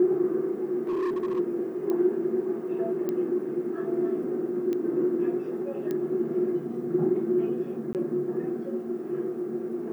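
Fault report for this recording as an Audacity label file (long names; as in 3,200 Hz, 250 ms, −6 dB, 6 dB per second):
0.870000	1.400000	clipping −25 dBFS
1.900000	1.900000	click −19 dBFS
3.090000	3.090000	click −18 dBFS
4.730000	4.730000	click −20 dBFS
5.910000	5.910000	click −19 dBFS
7.930000	7.950000	drop-out 18 ms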